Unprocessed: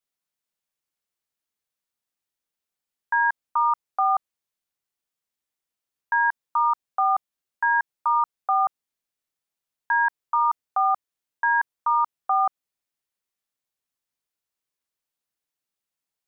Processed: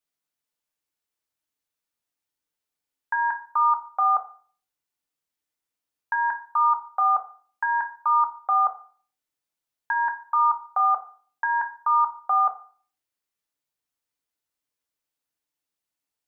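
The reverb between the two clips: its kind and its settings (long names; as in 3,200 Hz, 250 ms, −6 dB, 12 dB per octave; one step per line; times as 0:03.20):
feedback delay network reverb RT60 0.45 s, low-frequency decay 1×, high-frequency decay 0.65×, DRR 4.5 dB
level −1 dB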